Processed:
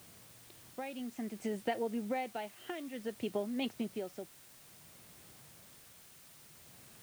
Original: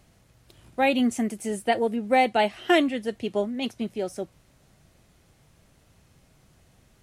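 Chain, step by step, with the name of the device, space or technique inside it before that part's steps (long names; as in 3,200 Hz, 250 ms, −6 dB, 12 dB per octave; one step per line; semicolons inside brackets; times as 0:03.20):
medium wave at night (band-pass filter 110–4,100 Hz; downward compressor, threshold −32 dBFS, peak gain reduction 16.5 dB; amplitude tremolo 0.57 Hz, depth 64%; steady tone 9,000 Hz −67 dBFS; white noise bed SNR 17 dB)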